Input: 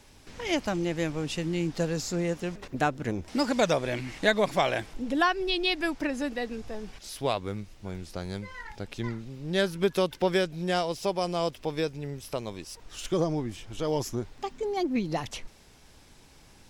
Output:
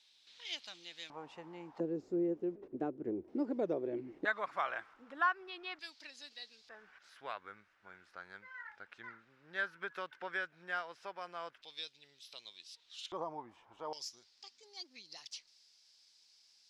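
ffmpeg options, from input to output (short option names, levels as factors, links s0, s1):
-af "asetnsamples=n=441:p=0,asendcmd='1.1 bandpass f 920;1.8 bandpass f 360;4.25 bandpass f 1300;5.79 bandpass f 4300;6.69 bandpass f 1500;11.62 bandpass f 3800;13.12 bandpass f 950;13.93 bandpass f 4800',bandpass=f=3800:t=q:w=4.1:csg=0"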